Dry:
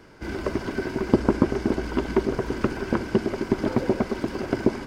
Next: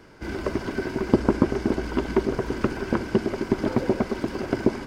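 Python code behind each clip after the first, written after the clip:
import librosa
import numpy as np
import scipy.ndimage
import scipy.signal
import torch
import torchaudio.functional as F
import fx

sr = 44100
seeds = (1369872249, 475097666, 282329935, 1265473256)

y = x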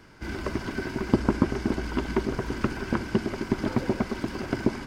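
y = fx.peak_eq(x, sr, hz=480.0, db=-6.5, octaves=1.4)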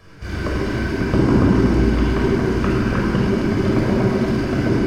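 y = fx.room_shoebox(x, sr, seeds[0], volume_m3=3000.0, walls='mixed', distance_m=5.9)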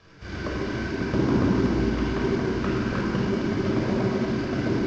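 y = fx.cvsd(x, sr, bps=32000)
y = fx.low_shelf(y, sr, hz=66.0, db=-9.5)
y = y * librosa.db_to_amplitude(-5.5)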